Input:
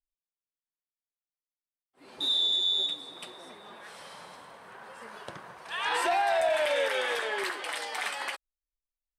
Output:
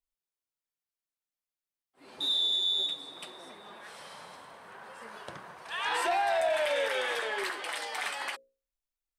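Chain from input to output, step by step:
mains-hum notches 60/120/180/240/300/360/420/480/540 Hz
in parallel at −11.5 dB: soft clipping −33.5 dBFS, distortion −7 dB
on the sum: level −2.5 dB

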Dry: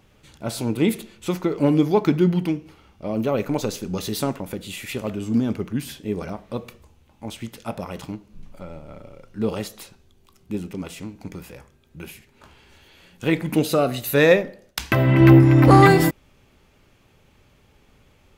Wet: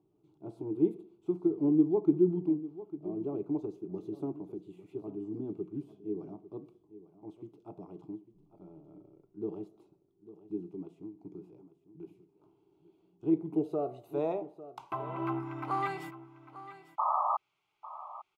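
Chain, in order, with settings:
dynamic equaliser 4,800 Hz, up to −7 dB, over −46 dBFS, Q 1.1
sound drawn into the spectrogram noise, 0:16.98–0:17.37, 540–1,300 Hz −12 dBFS
band-pass filter sweep 330 Hz → 1,900 Hz, 0:13.24–0:15.90
low-shelf EQ 130 Hz +5 dB
phaser with its sweep stopped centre 350 Hz, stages 8
on a send: single-tap delay 849 ms −15.5 dB
on the sum: level −4 dB

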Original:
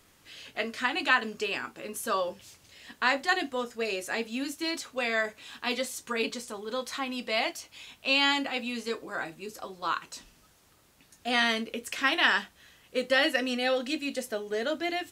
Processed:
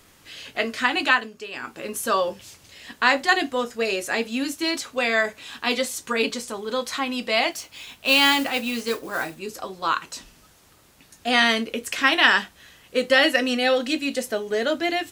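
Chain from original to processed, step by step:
0:00.96–0:01.85: duck −11.5 dB, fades 0.33 s equal-power
0:07.51–0:09.39: noise that follows the level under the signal 16 dB
level +7 dB

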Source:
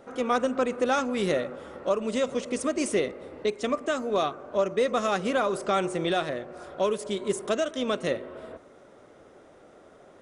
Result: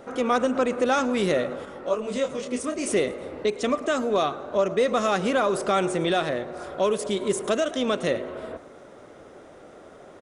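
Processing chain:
in parallel at 0 dB: brickwall limiter −26 dBFS, peak gain reduction 12 dB
on the sum: echo with shifted repeats 108 ms, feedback 47%, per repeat +67 Hz, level −21 dB
0:01.65–0:02.87: micro pitch shift up and down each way 16 cents

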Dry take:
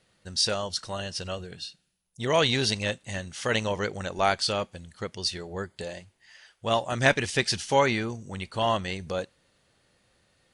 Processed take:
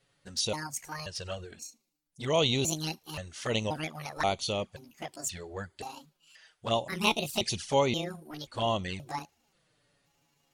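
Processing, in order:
pitch shifter gated in a rhythm +7.5 semitones, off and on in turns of 529 ms
flanger swept by the level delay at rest 7.3 ms, full sweep at −23 dBFS
level −1.5 dB

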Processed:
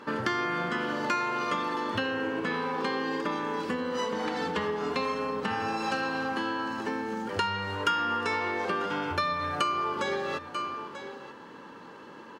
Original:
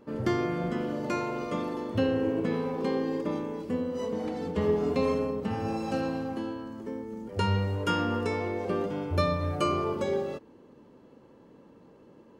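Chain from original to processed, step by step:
flat-topped bell 1,200 Hz +10.5 dB 1.3 octaves
on a send: single-tap delay 939 ms −20.5 dB
on the sum: downward compressor 10 to 1, threshold −33 dBFS, peak gain reduction 17.5 dB
meter weighting curve D
level +6 dB

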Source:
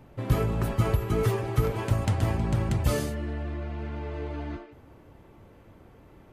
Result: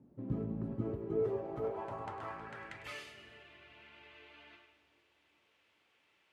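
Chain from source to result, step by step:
background noise pink −65 dBFS
band-pass filter sweep 240 Hz → 2,800 Hz, 0:00.67–0:03.10
echo with a time of its own for lows and highs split 540 Hz, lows 420 ms, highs 102 ms, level −11.5 dB
level −3 dB

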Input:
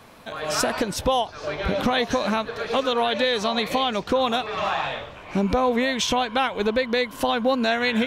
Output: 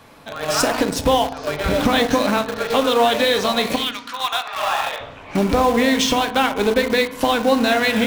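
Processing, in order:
0:03.75–0:04.99: high-pass filter 1,500 Hz → 420 Hz 24 dB per octave
convolution reverb RT60 0.90 s, pre-delay 4 ms, DRR 6.5 dB
in parallel at −8 dB: bit reduction 4 bits
on the sum: level +1 dB

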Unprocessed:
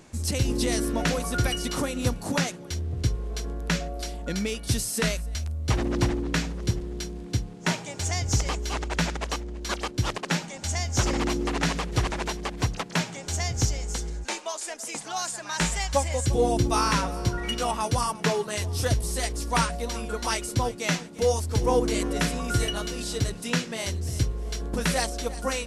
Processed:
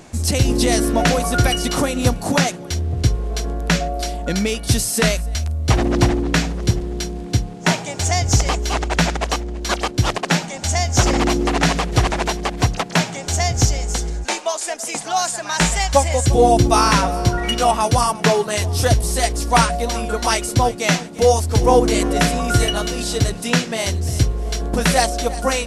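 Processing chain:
parametric band 710 Hz +6 dB 0.28 octaves
level +8.5 dB

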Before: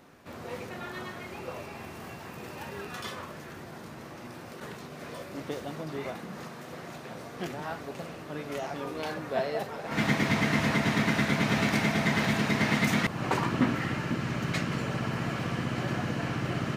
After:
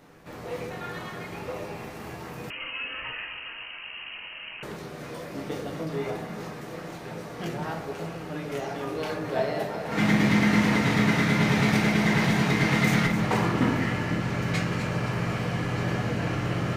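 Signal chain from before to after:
delay that swaps between a low-pass and a high-pass 130 ms, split 930 Hz, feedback 73%, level −8 dB
rectangular room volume 38 cubic metres, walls mixed, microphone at 0.46 metres
0:02.50–0:04.63: voice inversion scrambler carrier 3,000 Hz

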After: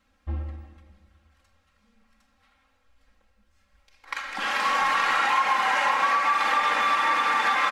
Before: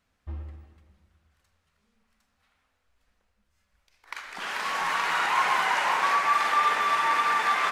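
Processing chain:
high-shelf EQ 7,600 Hz −8.5 dB
comb filter 3.7 ms, depth 92%
downward compressor 6 to 1, threshold −23 dBFS, peak gain reduction 8 dB
level +4 dB

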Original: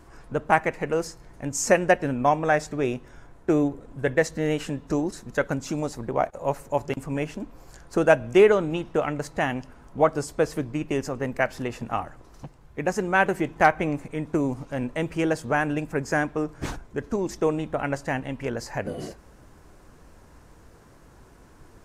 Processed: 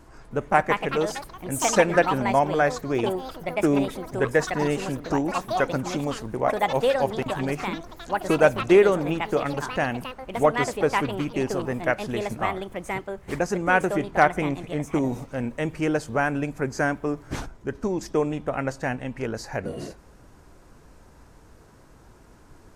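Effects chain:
speed change −4%
delay with pitch and tempo change per echo 311 ms, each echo +5 semitones, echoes 3, each echo −6 dB

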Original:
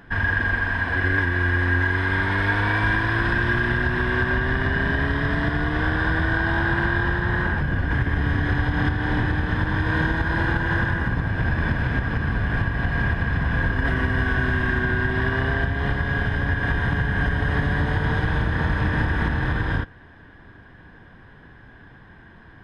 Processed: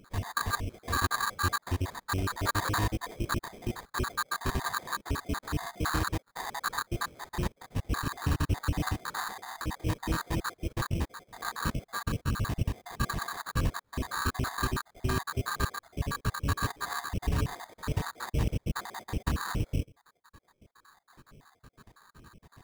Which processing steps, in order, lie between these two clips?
time-frequency cells dropped at random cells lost 72%
sample-rate reduction 2,800 Hz, jitter 0%
level −4.5 dB

